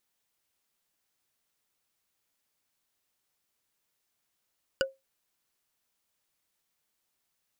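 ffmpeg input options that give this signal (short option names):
-f lavfi -i "aevalsrc='0.0891*pow(10,-3*t/0.2)*sin(2*PI*536*t)+0.0794*pow(10,-3*t/0.059)*sin(2*PI*1477.8*t)+0.0708*pow(10,-3*t/0.026)*sin(2*PI*2896.5*t)+0.0631*pow(10,-3*t/0.014)*sin(2*PI*4788.1*t)+0.0562*pow(10,-3*t/0.009)*sin(2*PI*7150.2*t)':d=0.45:s=44100"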